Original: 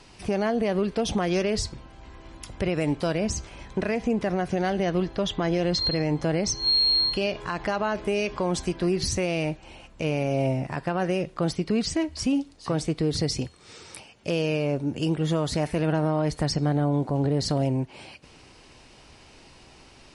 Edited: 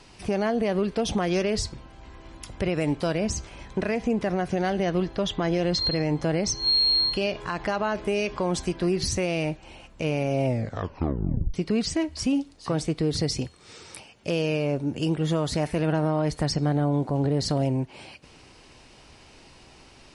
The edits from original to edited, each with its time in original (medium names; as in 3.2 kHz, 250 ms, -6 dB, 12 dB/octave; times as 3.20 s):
10.46 s: tape stop 1.08 s